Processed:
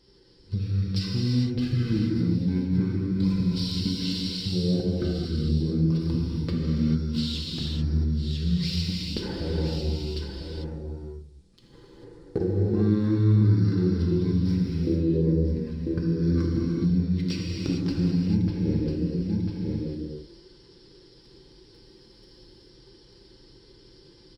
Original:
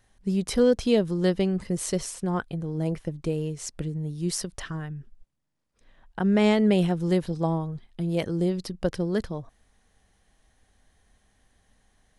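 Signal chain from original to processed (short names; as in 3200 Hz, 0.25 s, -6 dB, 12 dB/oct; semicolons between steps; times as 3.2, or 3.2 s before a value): half-wave gain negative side -3 dB; speed mistake 15 ips tape played at 7.5 ips; comb 5.9 ms, depth 49%; vocal rider within 4 dB 0.5 s; band shelf 6000 Hz +12 dB; sample leveller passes 1; on a send: echo 0.996 s -15.5 dB; on the sum: compressor 6:1, threshold -36 dBFS, peak gain reduction 19.5 dB; HPF 46 Hz; resonant low shelf 550 Hz +8.5 dB, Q 3; non-linear reverb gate 0.47 s flat, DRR -3.5 dB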